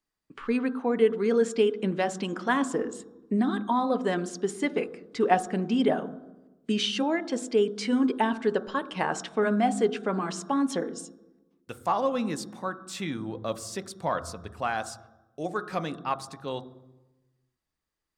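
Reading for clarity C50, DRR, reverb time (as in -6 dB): 16.0 dB, 11.0 dB, 1.1 s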